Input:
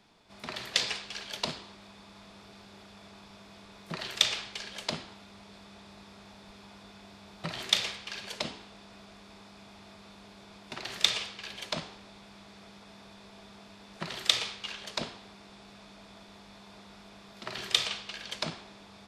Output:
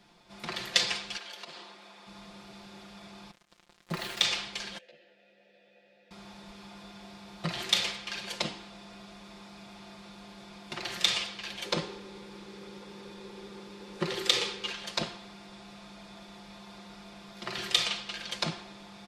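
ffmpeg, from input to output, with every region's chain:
ffmpeg -i in.wav -filter_complex "[0:a]asettb=1/sr,asplit=3[link_01][link_02][link_03];[link_01]atrim=end=1.174[link_04];[link_02]atrim=start=1.17:end=2.07,asetpts=PTS-STARTPTS,afade=type=in:duration=0.004:curve=qsin,afade=type=out:start_time=0.896:duration=0.004:curve=qsin,highpass=frequency=190:poles=1,bass=frequency=250:gain=-12,treble=frequency=4000:gain=-4,acompressor=threshold=-42dB:ratio=10:attack=3.2:release=140:knee=1:detection=peak[link_05];[link_03]atrim=start=2.066[link_06];[link_04][link_05]acrossfade=duration=0.004:curve1=hsin:curve2=qsin[link_07];[link_07][link_06]acrossfade=duration=0.004:curve1=qsin:curve2=hsin,asettb=1/sr,asplit=3[link_08][link_09][link_10];[link_08]atrim=end=3.314[link_11];[link_09]atrim=start=3.31:end=4.23,asetpts=PTS-STARTPTS,afade=type=in:duration=0.004:curve=qsin,afade=type=out:start_time=0.916:duration=0.004:curve=qsin,lowpass=frequency=4000:poles=1,acrusher=bits=6:mix=0:aa=0.5[link_12];[link_10]atrim=start=4.226[link_13];[link_11][link_12]acrossfade=duration=0.004:curve1=hsin:curve2=qsin[link_14];[link_14][link_13]acrossfade=duration=0.004:curve1=qsin:curve2=hsin,asettb=1/sr,asplit=3[link_15][link_16][link_17];[link_15]atrim=end=4.784[link_18];[link_16]atrim=start=4.78:end=6.11,asetpts=PTS-STARTPTS,afade=type=in:duration=0.004:curve=qsin,afade=type=out:start_time=1.326:duration=0.004:curve=qsin,acompressor=threshold=-48dB:ratio=2.5:attack=3.2:release=140:knee=1:detection=peak,asplit=3[link_19][link_20][link_21];[link_19]bandpass=frequency=530:width_type=q:width=8,volume=0dB[link_22];[link_20]bandpass=frequency=1840:width_type=q:width=8,volume=-6dB[link_23];[link_21]bandpass=frequency=2480:width_type=q:width=8,volume=-9dB[link_24];[link_22][link_23][link_24]amix=inputs=3:normalize=0,asplit=2[link_25][link_26];[link_26]adelay=14,volume=-2dB[link_27];[link_25][link_27]amix=inputs=2:normalize=0,atrim=end_sample=58653[link_28];[link_17]atrim=start=6.106[link_29];[link_18][link_28]acrossfade=duration=0.004:curve1=hsin:curve2=qsin[link_30];[link_30][link_29]acrossfade=duration=0.004:curve1=qsin:curve2=hsin,asettb=1/sr,asplit=3[link_31][link_32][link_33];[link_31]atrim=end=11.654[link_34];[link_32]atrim=start=11.65:end=14.71,asetpts=PTS-STARTPTS,afade=type=in:duration=0.004:curve=qsin,afade=type=out:start_time=3.056:duration=0.004:curve=qsin,asuperstop=centerf=680:order=4:qfactor=6.6,equalizer=frequency=420:width=2:gain=13[link_35];[link_33]atrim=start=14.706[link_36];[link_34][link_35]acrossfade=duration=0.004:curve1=hsin:curve2=qsin[link_37];[link_37][link_36]acrossfade=duration=0.004:curve1=qsin:curve2=hsin,aecho=1:1:5.7:0.65,alimiter=level_in=7dB:limit=-1dB:release=50:level=0:latency=1,volume=-6dB" out.wav

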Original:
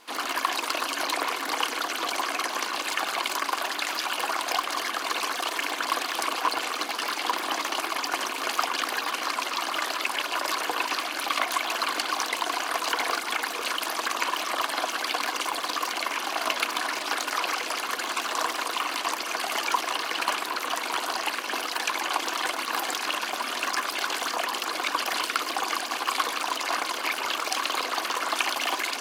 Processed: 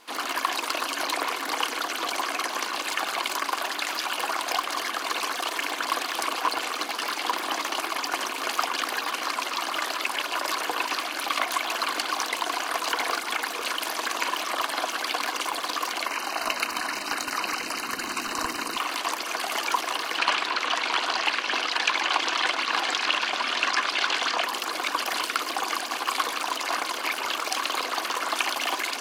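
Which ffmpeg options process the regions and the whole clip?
ffmpeg -i in.wav -filter_complex "[0:a]asettb=1/sr,asplit=3[link_01][link_02][link_03];[link_01]atrim=end=13.734[link_04];[link_02]atrim=start=13.73:end=14.36,asetpts=PTS-STARTPTS,afade=type=in:duration=0.004:curve=qsin,afade=type=out:start_time=0.626:duration=0.004:curve=qsin,equalizer=frequency=1200:width_type=o:width=0.28:gain=-3,asplit=2[link_05][link_06];[link_06]adelay=42,volume=-10.5dB[link_07];[link_05][link_07]amix=inputs=2:normalize=0,atrim=end_sample=27783[link_08];[link_03]atrim=start=14.356[link_09];[link_04][link_08]acrossfade=duration=0.004:curve1=hsin:curve2=qsin[link_10];[link_10][link_09]acrossfade=duration=0.004:curve1=qsin:curve2=hsin,asettb=1/sr,asplit=3[link_11][link_12][link_13];[link_11]atrim=end=16.064[link_14];[link_12]atrim=start=16.06:end=18.77,asetpts=PTS-STARTPTS,afade=type=in:duration=0.004:curve=qsin,afade=type=out:start_time=2.706:duration=0.004:curve=qsin,asubboost=boost=12:cutoff=200,asuperstop=centerf=3400:order=8:qfactor=5.6[link_15];[link_13]atrim=start=18.766[link_16];[link_14][link_15]acrossfade=duration=0.004:curve1=hsin:curve2=qsin[link_17];[link_17][link_16]acrossfade=duration=0.004:curve1=qsin:curve2=hsin,asettb=1/sr,asplit=3[link_18][link_19][link_20];[link_18]atrim=end=20.184[link_21];[link_19]atrim=start=20.18:end=24.44,asetpts=PTS-STARTPTS,afade=type=in:duration=0.004:curve=qsin,afade=type=out:start_time=4.256:duration=0.004:curve=qsin,lowpass=3600,highshelf=frequency=2200:gain=11.5[link_22];[link_20]atrim=start=24.436[link_23];[link_21][link_22]acrossfade=duration=0.004:curve1=hsin:curve2=qsin[link_24];[link_24][link_23]acrossfade=duration=0.004:curve1=qsin:curve2=hsin" out.wav

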